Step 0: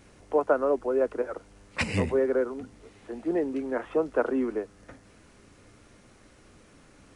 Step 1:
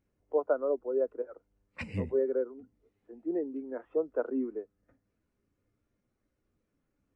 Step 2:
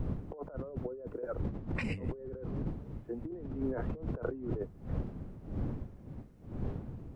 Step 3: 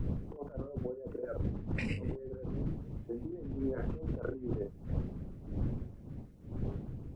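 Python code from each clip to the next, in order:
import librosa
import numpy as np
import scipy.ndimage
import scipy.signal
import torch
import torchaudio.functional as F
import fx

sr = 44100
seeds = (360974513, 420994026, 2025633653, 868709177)

y1 = fx.spectral_expand(x, sr, expansion=1.5)
y1 = y1 * 10.0 ** (-5.0 / 20.0)
y2 = fx.dmg_wind(y1, sr, seeds[0], corner_hz=180.0, level_db=-41.0)
y2 = fx.over_compress(y2, sr, threshold_db=-41.0, ratio=-1.0)
y2 = y2 * 10.0 ** (3.0 / 20.0)
y3 = fx.filter_lfo_notch(y2, sr, shape='saw_up', hz=6.4, low_hz=580.0, high_hz=2300.0, q=1.1)
y3 = fx.doubler(y3, sr, ms=40.0, db=-7.5)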